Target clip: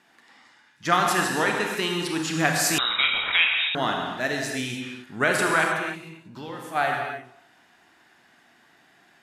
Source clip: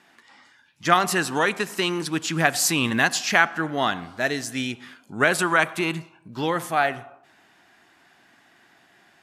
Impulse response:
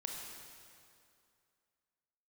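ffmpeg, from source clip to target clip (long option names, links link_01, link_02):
-filter_complex "[0:a]asplit=3[link_01][link_02][link_03];[link_01]afade=type=out:start_time=5.75:duration=0.02[link_04];[link_02]acompressor=threshold=-37dB:ratio=2.5,afade=type=in:start_time=5.75:duration=0.02,afade=type=out:start_time=6.74:duration=0.02[link_05];[link_03]afade=type=in:start_time=6.74:duration=0.02[link_06];[link_04][link_05][link_06]amix=inputs=3:normalize=0[link_07];[1:a]atrim=start_sample=2205,afade=type=out:start_time=0.37:duration=0.01,atrim=end_sample=16758[link_08];[link_07][link_08]afir=irnorm=-1:irlink=0,asettb=1/sr,asplit=3[link_09][link_10][link_11];[link_09]atrim=end=2.784[link_12];[link_10]atrim=start=2.78:end=3.75,asetpts=PTS-STARTPTS,afade=type=in:duration=0.004:curve=qsin,afade=type=out:start_time=0.966:duration=0.004:curve=qsin,lowpass=frequency=3400:width_type=q:width=0.5098,lowpass=frequency=3400:width_type=q:width=0.6013,lowpass=frequency=3400:width_type=q:width=0.9,lowpass=frequency=3400:width_type=q:width=2.563,afreqshift=-4000[link_13];[link_11]atrim=start=3.746[link_14];[link_12][link_13]acrossfade=duration=0.004:curve1=hsin:curve2=qsin[link_15];[link_15][link_14]acrossfade=duration=0.004:curve1=qsin:curve2=hsin"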